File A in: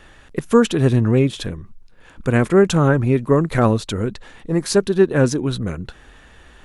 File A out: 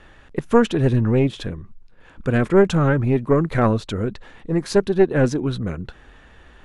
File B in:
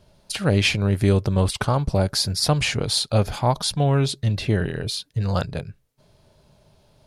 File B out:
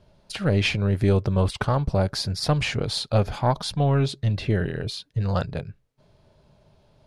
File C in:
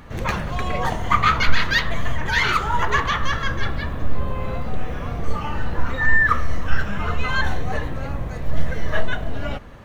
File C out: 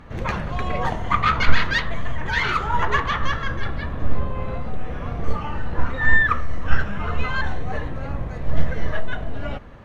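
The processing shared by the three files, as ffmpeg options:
ffmpeg -i in.wav -af "aemphasis=mode=reproduction:type=50kf,aeval=exprs='0.841*(cos(1*acos(clip(val(0)/0.841,-1,1)))-cos(1*PI/2))+0.237*(cos(2*acos(clip(val(0)/0.841,-1,1)))-cos(2*PI/2))':channel_layout=same,volume=-1dB" out.wav

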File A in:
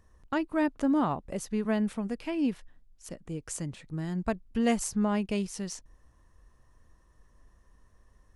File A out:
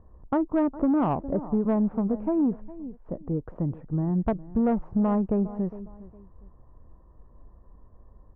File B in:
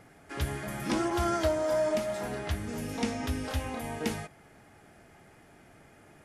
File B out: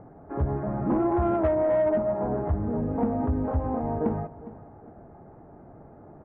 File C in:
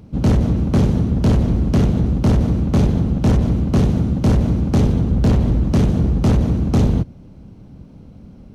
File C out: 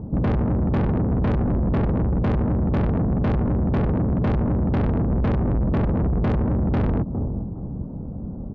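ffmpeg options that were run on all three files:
ffmpeg -i in.wav -af "lowpass=frequency=1000:width=0.5412,lowpass=frequency=1000:width=1.3066,aecho=1:1:409|818:0.112|0.0303,aresample=16000,asoftclip=type=tanh:threshold=-22.5dB,aresample=44100,acompressor=threshold=-29dB:ratio=6,volume=9dB" out.wav

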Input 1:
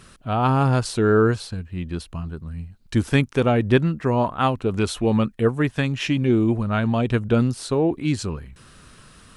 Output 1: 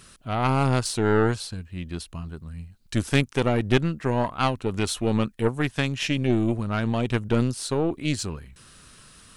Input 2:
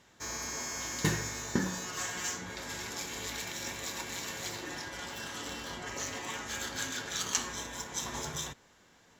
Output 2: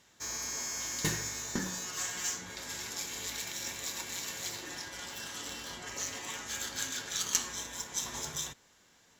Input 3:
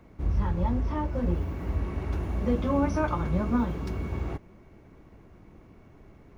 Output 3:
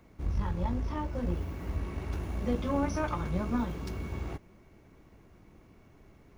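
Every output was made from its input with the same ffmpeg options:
ffmpeg -i in.wav -af "aeval=exprs='0.668*(cos(1*acos(clip(val(0)/0.668,-1,1)))-cos(1*PI/2))+0.106*(cos(4*acos(clip(val(0)/0.668,-1,1)))-cos(4*PI/2))':channel_layout=same,highshelf=frequency=2900:gain=8.5,volume=-5dB" out.wav

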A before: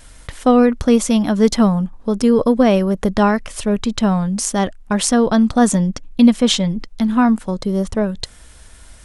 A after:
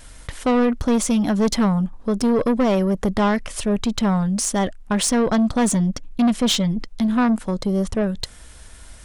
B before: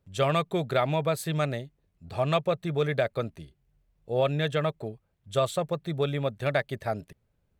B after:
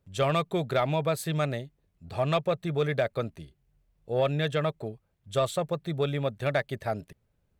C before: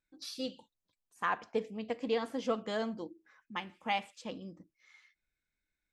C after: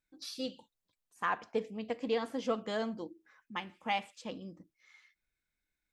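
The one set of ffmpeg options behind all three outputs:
ffmpeg -i in.wav -af "asoftclip=type=tanh:threshold=-13.5dB" out.wav

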